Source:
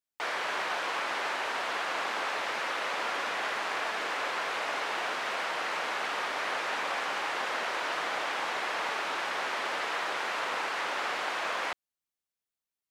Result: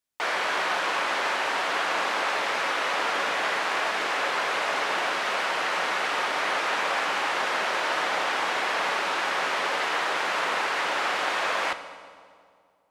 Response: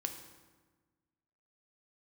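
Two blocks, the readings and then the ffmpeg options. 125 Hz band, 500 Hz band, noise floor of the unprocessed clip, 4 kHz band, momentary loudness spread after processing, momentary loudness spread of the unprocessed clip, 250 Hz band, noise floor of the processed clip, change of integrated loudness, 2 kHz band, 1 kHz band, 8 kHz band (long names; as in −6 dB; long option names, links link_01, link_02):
can't be measured, +6.0 dB, below −85 dBFS, +6.0 dB, 1 LU, 0 LU, +6.0 dB, −58 dBFS, +6.0 dB, +6.0 dB, +6.0 dB, +6.0 dB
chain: -filter_complex "[0:a]asplit=2[link_01][link_02];[1:a]atrim=start_sample=2205,asetrate=24696,aresample=44100[link_03];[link_02][link_03]afir=irnorm=-1:irlink=0,volume=-2.5dB[link_04];[link_01][link_04]amix=inputs=2:normalize=0"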